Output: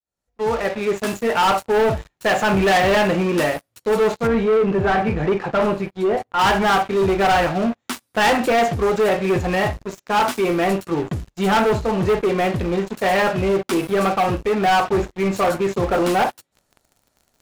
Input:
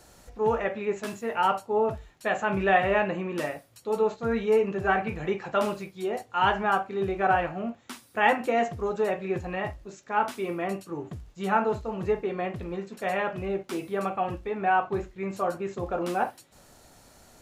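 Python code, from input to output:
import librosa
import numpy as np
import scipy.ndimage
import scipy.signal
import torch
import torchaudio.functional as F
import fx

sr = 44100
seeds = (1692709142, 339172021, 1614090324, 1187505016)

y = fx.fade_in_head(x, sr, length_s=1.37)
y = fx.leveller(y, sr, passes=5)
y = fx.lowpass(y, sr, hz=1500.0, slope=6, at=(4.27, 6.39))
y = y * librosa.db_to_amplitude(-4.5)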